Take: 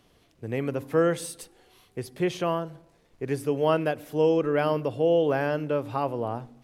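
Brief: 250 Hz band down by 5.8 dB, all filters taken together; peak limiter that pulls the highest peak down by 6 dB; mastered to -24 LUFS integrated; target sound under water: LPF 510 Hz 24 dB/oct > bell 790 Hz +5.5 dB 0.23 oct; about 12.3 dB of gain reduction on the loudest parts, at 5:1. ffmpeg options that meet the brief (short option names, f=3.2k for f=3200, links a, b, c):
-af "equalizer=f=250:t=o:g=-9,acompressor=threshold=-34dB:ratio=5,alimiter=level_in=4.5dB:limit=-24dB:level=0:latency=1,volume=-4.5dB,lowpass=f=510:w=0.5412,lowpass=f=510:w=1.3066,equalizer=f=790:t=o:w=0.23:g=5.5,volume=18.5dB"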